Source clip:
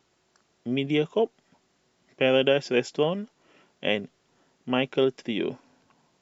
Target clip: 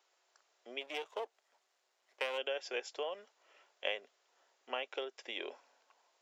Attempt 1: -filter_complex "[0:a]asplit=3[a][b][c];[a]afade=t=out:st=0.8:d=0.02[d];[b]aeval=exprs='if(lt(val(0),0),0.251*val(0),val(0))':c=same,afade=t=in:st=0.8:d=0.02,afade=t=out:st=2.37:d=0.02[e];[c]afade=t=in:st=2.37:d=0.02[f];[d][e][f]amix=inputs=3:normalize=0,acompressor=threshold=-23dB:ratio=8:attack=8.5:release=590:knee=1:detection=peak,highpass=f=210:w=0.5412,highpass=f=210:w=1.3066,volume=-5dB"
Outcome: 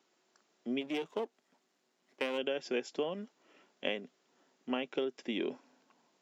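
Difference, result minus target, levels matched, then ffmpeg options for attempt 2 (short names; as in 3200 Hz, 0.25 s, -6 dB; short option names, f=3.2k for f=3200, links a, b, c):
250 Hz band +14.5 dB
-filter_complex "[0:a]asplit=3[a][b][c];[a]afade=t=out:st=0.8:d=0.02[d];[b]aeval=exprs='if(lt(val(0),0),0.251*val(0),val(0))':c=same,afade=t=in:st=0.8:d=0.02,afade=t=out:st=2.37:d=0.02[e];[c]afade=t=in:st=2.37:d=0.02[f];[d][e][f]amix=inputs=3:normalize=0,acompressor=threshold=-23dB:ratio=8:attack=8.5:release=590:knee=1:detection=peak,highpass=f=510:w=0.5412,highpass=f=510:w=1.3066,volume=-5dB"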